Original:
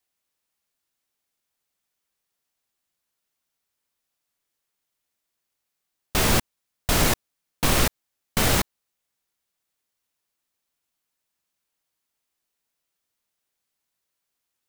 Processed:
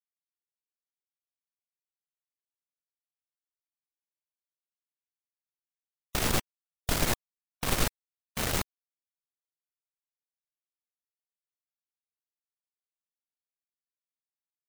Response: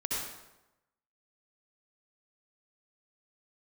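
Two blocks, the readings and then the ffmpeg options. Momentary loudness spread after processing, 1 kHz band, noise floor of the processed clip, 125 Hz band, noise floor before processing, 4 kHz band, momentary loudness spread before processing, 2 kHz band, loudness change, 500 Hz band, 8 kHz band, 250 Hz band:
9 LU, −8.0 dB, below −85 dBFS, −8.0 dB, −81 dBFS, −7.5 dB, 9 LU, −8.0 dB, −8.0 dB, −8.0 dB, −7.5 dB, −8.0 dB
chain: -af "aeval=exprs='0.447*(cos(1*acos(clip(val(0)/0.447,-1,1)))-cos(1*PI/2))+0.1*(cos(4*acos(clip(val(0)/0.447,-1,1)))-cos(4*PI/2))':channel_layout=same,afftfilt=real='re*gte(hypot(re,im),0.0158)':imag='im*gte(hypot(re,im),0.0158)':win_size=1024:overlap=0.75,volume=-8.5dB"

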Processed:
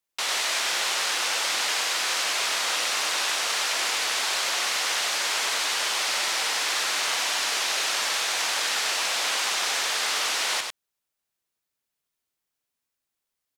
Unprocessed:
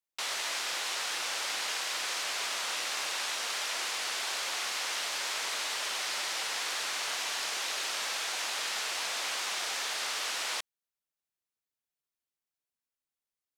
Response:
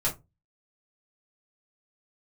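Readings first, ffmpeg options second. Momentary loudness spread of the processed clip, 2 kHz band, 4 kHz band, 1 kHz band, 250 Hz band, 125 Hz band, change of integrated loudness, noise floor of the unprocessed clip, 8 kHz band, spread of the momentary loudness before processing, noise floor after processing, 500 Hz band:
0 LU, +8.0 dB, +8.0 dB, +8.0 dB, +8.0 dB, can't be measured, +8.0 dB, below −85 dBFS, +8.0 dB, 0 LU, −84 dBFS, +8.0 dB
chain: -af "aecho=1:1:98:0.531,volume=7dB"

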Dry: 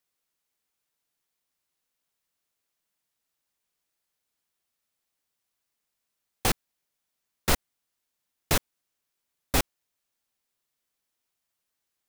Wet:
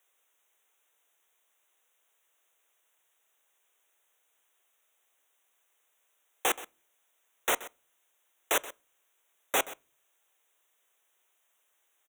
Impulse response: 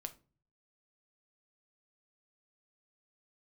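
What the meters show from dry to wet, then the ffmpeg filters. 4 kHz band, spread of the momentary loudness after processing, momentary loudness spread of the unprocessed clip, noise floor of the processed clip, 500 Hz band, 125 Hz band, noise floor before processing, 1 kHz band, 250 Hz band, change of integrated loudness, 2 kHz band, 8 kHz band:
−3.5 dB, 18 LU, 5 LU, −74 dBFS, −1.0 dB, −26.5 dB, −83 dBFS, 0.0 dB, −11.0 dB, −2.0 dB, 0.0 dB, −2.0 dB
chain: -filter_complex "[0:a]highpass=frequency=390:width=0.5412,highpass=frequency=390:width=1.3066,alimiter=limit=-23.5dB:level=0:latency=1,asoftclip=type=hard:threshold=-31dB,asuperstop=centerf=4700:order=8:qfactor=2.2,aecho=1:1:127:0.141,asplit=2[link_01][link_02];[1:a]atrim=start_sample=2205,lowpass=8100[link_03];[link_02][link_03]afir=irnorm=-1:irlink=0,volume=-8.5dB[link_04];[link_01][link_04]amix=inputs=2:normalize=0,volume=9dB"

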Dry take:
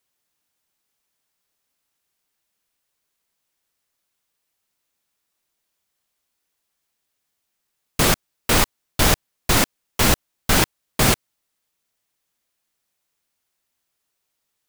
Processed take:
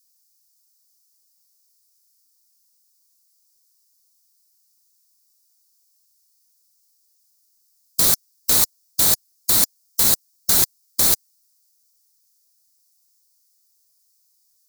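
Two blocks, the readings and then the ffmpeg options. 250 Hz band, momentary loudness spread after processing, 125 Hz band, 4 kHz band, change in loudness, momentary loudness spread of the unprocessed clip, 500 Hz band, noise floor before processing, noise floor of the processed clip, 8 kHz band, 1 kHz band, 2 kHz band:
−10.5 dB, 4 LU, −12.0 dB, −0.5 dB, +3.0 dB, 5 LU, −10.0 dB, −77 dBFS, −64 dBFS, +4.5 dB, −10.0 dB, −11.0 dB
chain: -af "highshelf=frequency=3800:width_type=q:width=3:gain=9.5,crystalizer=i=2.5:c=0,afftfilt=real='re*lt(hypot(re,im),1)':imag='im*lt(hypot(re,im),1)':win_size=1024:overlap=0.75,volume=-10dB"

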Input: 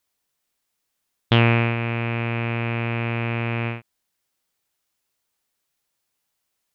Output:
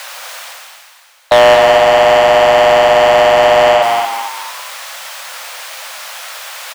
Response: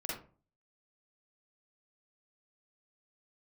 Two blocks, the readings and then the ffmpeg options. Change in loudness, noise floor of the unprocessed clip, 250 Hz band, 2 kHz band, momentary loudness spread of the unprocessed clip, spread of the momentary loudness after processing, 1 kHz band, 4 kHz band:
+14.0 dB, −77 dBFS, −1.0 dB, +12.0 dB, 8 LU, 19 LU, +21.5 dB, +16.0 dB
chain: -filter_complex "[0:a]afreqshift=490,areverse,acompressor=mode=upward:threshold=-35dB:ratio=2.5,areverse,asplit=2[link_01][link_02];[link_02]highpass=frequency=720:poles=1,volume=36dB,asoftclip=type=tanh:threshold=-4dB[link_03];[link_01][link_03]amix=inputs=2:normalize=0,lowpass=frequency=2000:poles=1,volume=-6dB,asplit=6[link_04][link_05][link_06][link_07][link_08][link_09];[link_05]adelay=227,afreqshift=100,volume=-7dB[link_10];[link_06]adelay=454,afreqshift=200,volume=-14.3dB[link_11];[link_07]adelay=681,afreqshift=300,volume=-21.7dB[link_12];[link_08]adelay=908,afreqshift=400,volume=-29dB[link_13];[link_09]adelay=1135,afreqshift=500,volume=-36.3dB[link_14];[link_04][link_10][link_11][link_12][link_13][link_14]amix=inputs=6:normalize=0,alimiter=level_in=6dB:limit=-1dB:release=50:level=0:latency=1,volume=-1dB"

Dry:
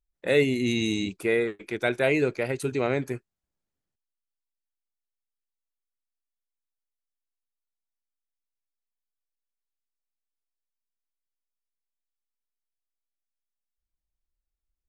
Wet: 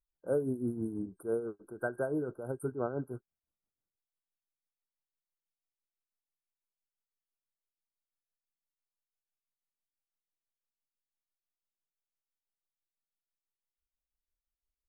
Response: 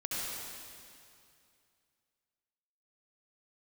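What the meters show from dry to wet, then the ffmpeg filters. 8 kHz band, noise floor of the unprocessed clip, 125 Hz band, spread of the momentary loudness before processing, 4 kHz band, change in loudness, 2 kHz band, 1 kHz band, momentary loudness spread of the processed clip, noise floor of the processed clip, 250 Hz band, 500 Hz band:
−16.0 dB, below −85 dBFS, −8.5 dB, 7 LU, below −40 dB, −10.0 dB, −17.0 dB, −8.5 dB, 7 LU, below −85 dBFS, −8.5 dB, −9.0 dB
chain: -af "tremolo=f=6:d=0.64,afftfilt=real='re*(1-between(b*sr/4096,1600,8500))':imag='im*(1-between(b*sr/4096,1600,8500))':win_size=4096:overlap=0.75,volume=-6dB"

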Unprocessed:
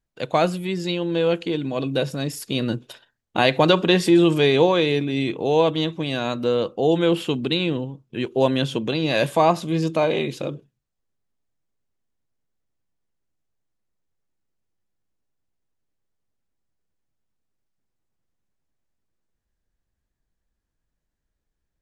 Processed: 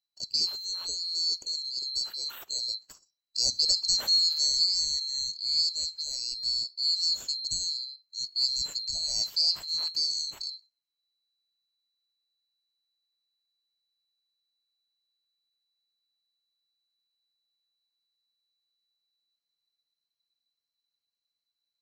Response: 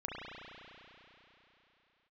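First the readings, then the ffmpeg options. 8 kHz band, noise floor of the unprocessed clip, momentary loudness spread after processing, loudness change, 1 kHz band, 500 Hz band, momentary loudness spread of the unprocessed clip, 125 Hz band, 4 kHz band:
+8.5 dB, −80 dBFS, 10 LU, −5.5 dB, below −30 dB, below −35 dB, 11 LU, below −30 dB, +4.0 dB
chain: -af "afftfilt=real='real(if(lt(b,736),b+184*(1-2*mod(floor(b/184),2)),b),0)':imag='imag(if(lt(b,736),b+184*(1-2*mod(floor(b/184),2)),b),0)':win_size=2048:overlap=0.75,volume=-9dB"

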